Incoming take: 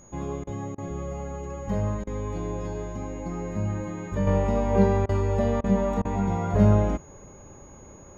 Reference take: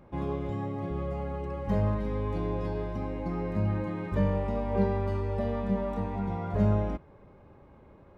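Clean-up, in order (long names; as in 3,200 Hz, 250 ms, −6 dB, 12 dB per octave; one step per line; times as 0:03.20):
notch filter 6,700 Hz, Q 30
repair the gap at 0:00.44/0:00.75/0:02.04/0:05.06/0:05.61/0:06.02, 29 ms
downward expander −39 dBFS, range −21 dB
level correction −6.5 dB, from 0:04.27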